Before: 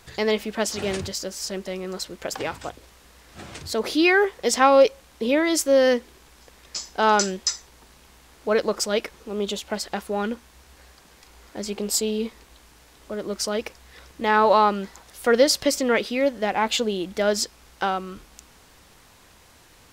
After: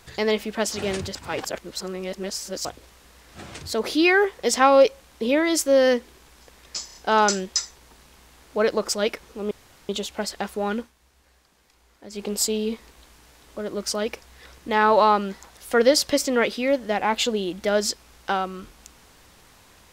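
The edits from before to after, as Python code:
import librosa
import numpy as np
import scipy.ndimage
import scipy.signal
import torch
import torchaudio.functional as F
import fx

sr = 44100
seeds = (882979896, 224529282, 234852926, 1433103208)

y = fx.edit(x, sr, fx.reverse_span(start_s=1.15, length_s=1.5),
    fx.stutter(start_s=6.86, slice_s=0.03, count=4),
    fx.insert_room_tone(at_s=9.42, length_s=0.38),
    fx.fade_down_up(start_s=10.32, length_s=1.45, db=-10.0, fade_s=0.13), tone=tone)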